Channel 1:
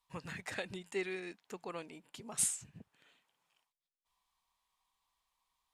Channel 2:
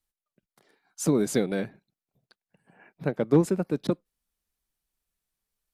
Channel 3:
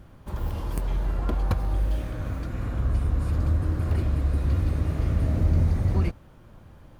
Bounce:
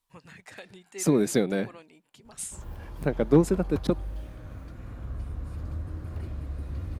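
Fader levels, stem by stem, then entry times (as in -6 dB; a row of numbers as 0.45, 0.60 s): -4.5, +1.0, -11.0 dB; 0.00, 0.00, 2.25 s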